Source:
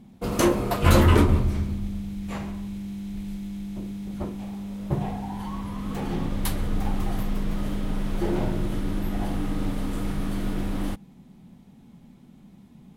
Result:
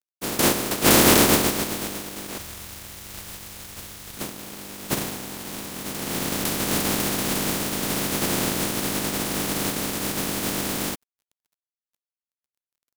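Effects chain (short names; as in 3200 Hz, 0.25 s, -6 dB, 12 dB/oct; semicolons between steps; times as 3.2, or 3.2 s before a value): spectral contrast lowered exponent 0.12; bell 280 Hz +13.5 dB 2.5 oct, from 2.38 s 69 Hz, from 4.17 s 230 Hz; crossover distortion -36 dBFS; gain -1.5 dB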